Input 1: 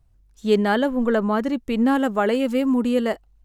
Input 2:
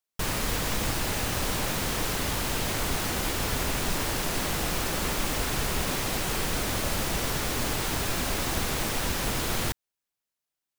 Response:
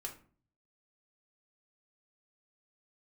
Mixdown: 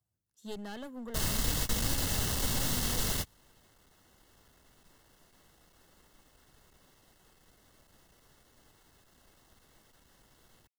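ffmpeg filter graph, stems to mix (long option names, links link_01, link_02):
-filter_complex "[0:a]highpass=frequency=99:width=0.5412,highpass=frequency=99:width=1.3066,highshelf=frequency=5200:gain=12,aeval=exprs='clip(val(0),-1,0.0708)':channel_layout=same,volume=-17.5dB,asplit=2[link_01][link_02];[1:a]aeval=exprs='clip(val(0),-1,0.0335)':channel_layout=same,adelay=950,volume=0.5dB[link_03];[link_02]apad=whole_len=517613[link_04];[link_03][link_04]sidechaingate=range=-34dB:threshold=-52dB:ratio=16:detection=peak[link_05];[link_01][link_05]amix=inputs=2:normalize=0,asuperstop=centerf=2400:order=20:qfactor=7.6,acrossover=split=190|3000[link_06][link_07][link_08];[link_07]acompressor=threshold=-42dB:ratio=2.5[link_09];[link_06][link_09][link_08]amix=inputs=3:normalize=0"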